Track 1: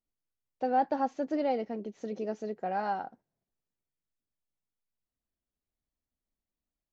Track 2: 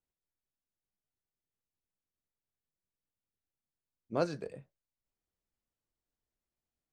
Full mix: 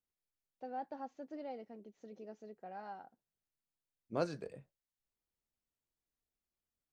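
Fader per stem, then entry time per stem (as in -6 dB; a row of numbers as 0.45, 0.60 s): -15.5, -4.0 dB; 0.00, 0.00 s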